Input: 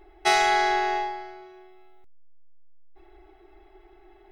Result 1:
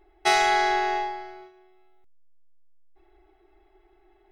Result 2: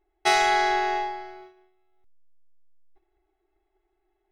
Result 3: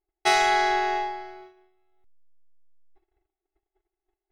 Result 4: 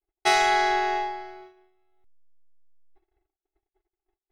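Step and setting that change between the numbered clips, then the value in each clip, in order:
noise gate, range: −7, −21, −36, −51 decibels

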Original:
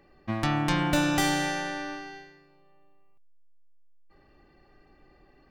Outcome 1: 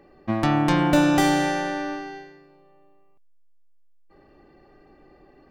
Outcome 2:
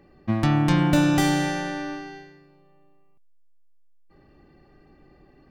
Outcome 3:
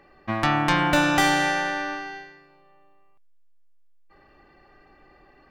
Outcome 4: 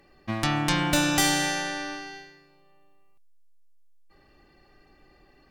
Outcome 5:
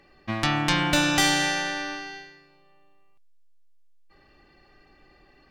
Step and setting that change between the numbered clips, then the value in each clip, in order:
parametric band, centre frequency: 420, 160, 1,300, 10,000, 4,000 Hertz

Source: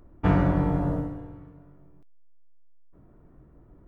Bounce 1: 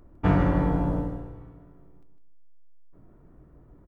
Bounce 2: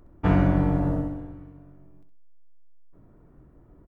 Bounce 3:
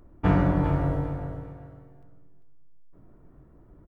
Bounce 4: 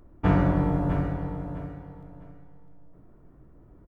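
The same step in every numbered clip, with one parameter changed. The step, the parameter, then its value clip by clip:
repeating echo, delay time: 154, 65, 396, 654 milliseconds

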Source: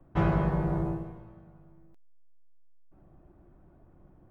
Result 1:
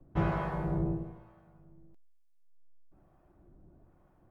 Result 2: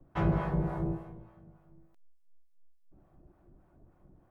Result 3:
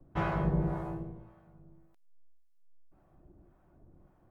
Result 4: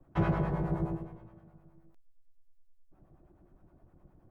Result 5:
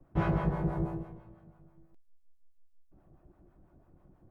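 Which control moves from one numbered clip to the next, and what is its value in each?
two-band tremolo in antiphase, speed: 1.1, 3.4, 1.8, 9.6, 6.1 Hertz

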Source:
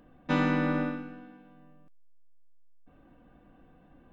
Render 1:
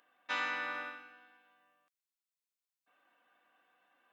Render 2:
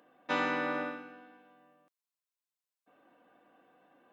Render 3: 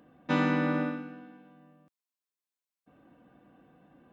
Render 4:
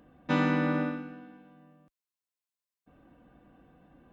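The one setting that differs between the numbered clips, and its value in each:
high-pass filter, corner frequency: 1,300, 470, 120, 44 Hertz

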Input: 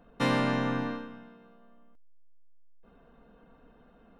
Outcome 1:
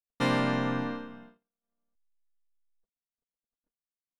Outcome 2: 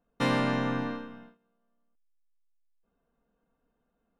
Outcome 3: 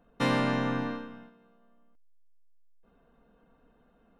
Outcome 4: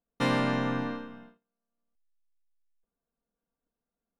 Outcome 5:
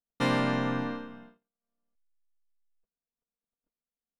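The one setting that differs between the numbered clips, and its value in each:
noise gate, range: −57, −19, −6, −32, −45 decibels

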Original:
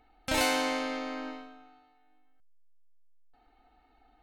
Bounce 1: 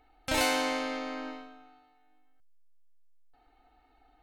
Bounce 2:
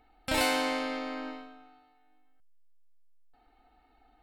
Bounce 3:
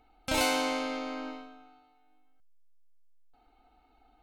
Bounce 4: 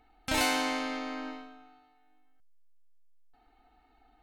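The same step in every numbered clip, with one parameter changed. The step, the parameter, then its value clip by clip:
notch filter, centre frequency: 220, 6,300, 1,800, 550 Hertz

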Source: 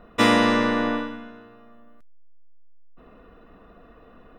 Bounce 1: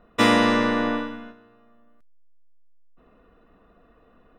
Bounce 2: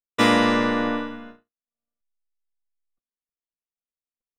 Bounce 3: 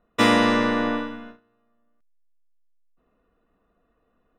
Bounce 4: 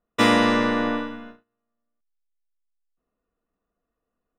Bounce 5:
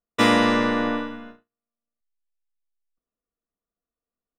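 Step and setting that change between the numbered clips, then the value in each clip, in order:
noise gate, range: −7, −60, −19, −32, −44 decibels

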